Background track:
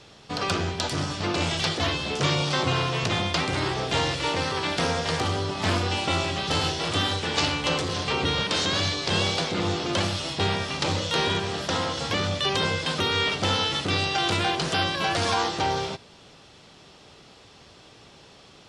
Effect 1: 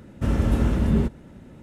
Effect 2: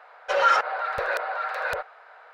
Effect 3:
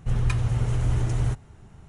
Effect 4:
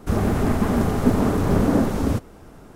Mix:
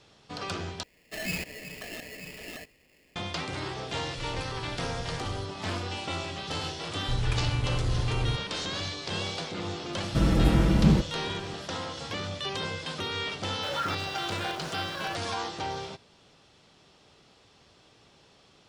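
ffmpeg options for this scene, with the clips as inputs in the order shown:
-filter_complex "[2:a]asplit=2[s0][s1];[3:a]asplit=2[s2][s3];[0:a]volume=0.376[s4];[s0]aeval=exprs='val(0)*sgn(sin(2*PI*1200*n/s))':c=same[s5];[s2]crystalizer=i=1:c=0[s6];[1:a]aecho=1:1:6.1:0.88[s7];[s1]aeval=exprs='val(0)*gte(abs(val(0)),0.0282)':c=same[s8];[s4]asplit=2[s9][s10];[s9]atrim=end=0.834[s11];[s5]atrim=end=2.33,asetpts=PTS-STARTPTS,volume=0.211[s12];[s10]atrim=start=3.156[s13];[s6]atrim=end=1.88,asetpts=PTS-STARTPTS,volume=0.15,afade=t=in:d=0.004:c=hsin,afade=t=out:st=1.876:d=0.004:c=hsin,adelay=4110[s14];[s3]atrim=end=1.88,asetpts=PTS-STARTPTS,volume=0.562,afade=t=in:d=0.004:c=hsin,afade=t=out:st=1.876:d=0.004:c=hsin,adelay=7020[s15];[s7]atrim=end=1.62,asetpts=PTS-STARTPTS,volume=0.891,afade=t=in:d=0.004:c=hsin,afade=t=out:st=1.616:d=0.004:c=hsin,adelay=9930[s16];[s8]atrim=end=2.33,asetpts=PTS-STARTPTS,volume=0.224,afade=t=in:d=0.004:c=hsin,afade=t=out:st=2.326:d=0.004:c=hsin,adelay=13340[s17];[s11][s12]acrossfade=d=0.004:c1=hsin:c2=hsin[s18];[s18][s13]acrossfade=d=0.004:c1=hsin:c2=hsin[s19];[s19][s14][s15][s16][s17]amix=inputs=5:normalize=0"

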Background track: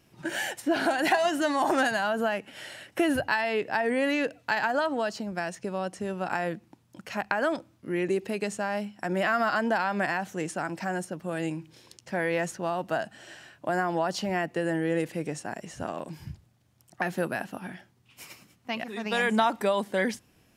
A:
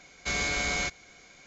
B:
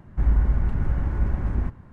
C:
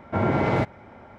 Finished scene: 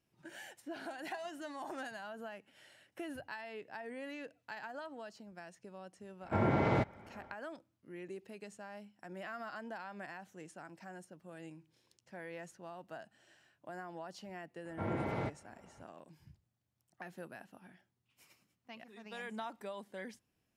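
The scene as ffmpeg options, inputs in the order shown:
-filter_complex "[3:a]asplit=2[s0][s1];[0:a]volume=0.112[s2];[s0]atrim=end=1.18,asetpts=PTS-STARTPTS,volume=0.398,afade=t=in:d=0.1,afade=t=out:st=1.08:d=0.1,adelay=6190[s3];[s1]atrim=end=1.18,asetpts=PTS-STARTPTS,volume=0.178,afade=t=in:d=0.004:c=hsin,afade=t=out:st=1.176:d=0.004:c=hsin,adelay=14650[s4];[s2][s3][s4]amix=inputs=3:normalize=0"

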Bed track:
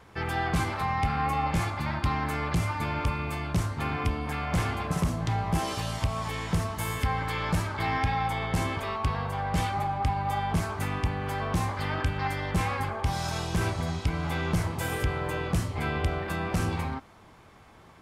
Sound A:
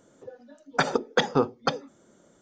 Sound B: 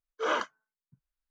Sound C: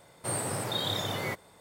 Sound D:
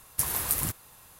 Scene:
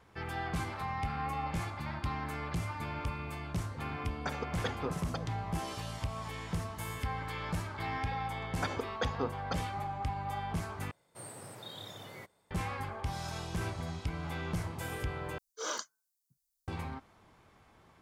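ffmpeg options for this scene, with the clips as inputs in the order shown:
-filter_complex "[1:a]asplit=2[s0][s1];[0:a]volume=0.376[s2];[2:a]aexciter=amount=13.4:drive=2.6:freq=4000[s3];[s2]asplit=3[s4][s5][s6];[s4]atrim=end=10.914[s7];[3:a]atrim=end=1.6,asetpts=PTS-STARTPTS,volume=0.178[s8];[s5]atrim=start=12.506:end=15.384[s9];[s3]atrim=end=1.3,asetpts=PTS-STARTPTS,volume=0.299[s10];[s6]atrim=start=16.676[s11];[s0]atrim=end=2.41,asetpts=PTS-STARTPTS,volume=0.178,afade=t=in:d=0.004:c=hsin,afade=t=out:st=2.406:d=0.004:c=hsin,adelay=3470[s12];[s1]atrim=end=2.41,asetpts=PTS-STARTPTS,volume=0.237,afade=t=in:d=0.004:c=hsin,afade=t=out:st=2.406:d=0.004:c=hsin,adelay=7840[s13];[s7][s8]acrossfade=d=0.004:c1=hsin:c2=hsin[s14];[s14][s9]acrossfade=d=0.004:c1=hsin:c2=hsin[s15];[s15][s10]acrossfade=d=0.004:c1=hsin:c2=hsin[s16];[s16][s11]acrossfade=d=0.004:c1=hsin:c2=hsin[s17];[s17][s12][s13]amix=inputs=3:normalize=0"

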